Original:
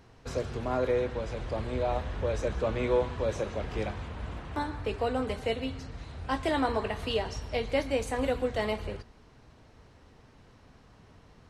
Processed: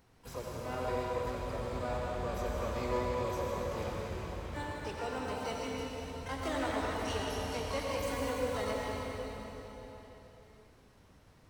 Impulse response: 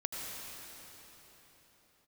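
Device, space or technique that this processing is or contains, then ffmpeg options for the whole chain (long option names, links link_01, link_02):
shimmer-style reverb: -filter_complex "[0:a]asplit=3[link_01][link_02][link_03];[link_01]afade=type=out:start_time=4.73:duration=0.02[link_04];[link_02]highpass=110,afade=type=in:start_time=4.73:duration=0.02,afade=type=out:start_time=5.51:duration=0.02[link_05];[link_03]afade=type=in:start_time=5.51:duration=0.02[link_06];[link_04][link_05][link_06]amix=inputs=3:normalize=0,asplit=2[link_07][link_08];[link_08]asetrate=88200,aresample=44100,atempo=0.5,volume=-7dB[link_09];[link_07][link_09]amix=inputs=2:normalize=0[link_10];[1:a]atrim=start_sample=2205[link_11];[link_10][link_11]afir=irnorm=-1:irlink=0,highshelf=frequency=7600:gain=9,volume=-9dB"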